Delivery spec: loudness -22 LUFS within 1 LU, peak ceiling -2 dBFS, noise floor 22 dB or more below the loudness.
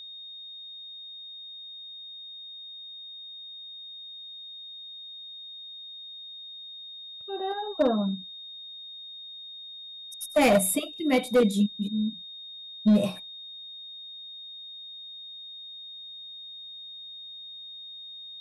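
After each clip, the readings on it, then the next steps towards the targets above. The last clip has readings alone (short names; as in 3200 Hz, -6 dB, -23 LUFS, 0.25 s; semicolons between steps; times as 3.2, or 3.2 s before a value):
clipped 0.4%; flat tops at -15.0 dBFS; steady tone 3700 Hz; tone level -40 dBFS; loudness -31.5 LUFS; peak -15.0 dBFS; loudness target -22.0 LUFS
-> clip repair -15 dBFS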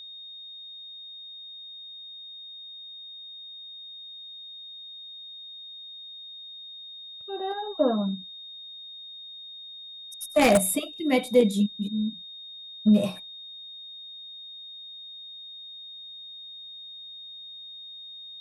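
clipped 0.0%; steady tone 3700 Hz; tone level -40 dBFS
-> notch 3700 Hz, Q 30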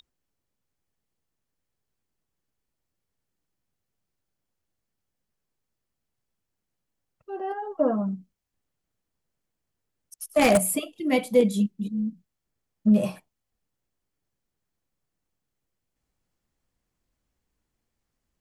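steady tone none; loudness -24.5 LUFS; peak -6.0 dBFS; loudness target -22.0 LUFS
-> gain +2.5 dB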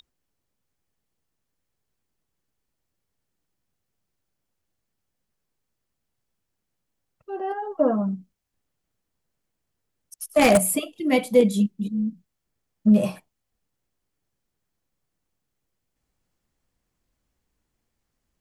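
loudness -22.0 LUFS; peak -3.5 dBFS; noise floor -80 dBFS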